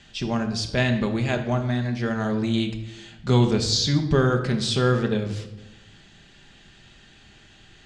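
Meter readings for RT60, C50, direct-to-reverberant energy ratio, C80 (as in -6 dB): 1.0 s, 9.5 dB, 4.0 dB, 11.5 dB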